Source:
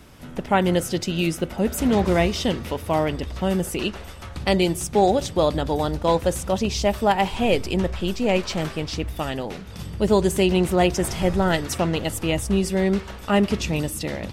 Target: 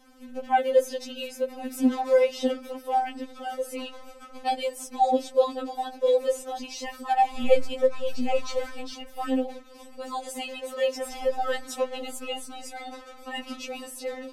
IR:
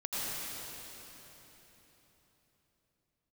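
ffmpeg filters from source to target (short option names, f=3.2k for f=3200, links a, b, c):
-filter_complex "[0:a]equalizer=f=530:t=o:w=1.3:g=8,asettb=1/sr,asplit=3[a][b][c];[a]atrim=end=7.344[d];[b]atrim=start=7.34:end=9.59,asetpts=PTS-STARTPTS,afade=t=in:d=0.004:c=qsin,afade=t=out:st=2.246:d=0.004:c=qsin,aphaser=in_gain=1:out_gain=1:delay=2.1:decay=0.53:speed=2:type=triangular[e];[c]atrim=start=9.586[f];[d][e]acrossfade=d=0.004:c1=hsin:c2=qsin[g];[g][f]acrossfade=d=0.004:c1=qsin:c2=hsin,afftfilt=real='re*3.46*eq(mod(b,12),0)':imag='im*3.46*eq(mod(b,12),0)':win_size=2048:overlap=0.75,volume=-7dB"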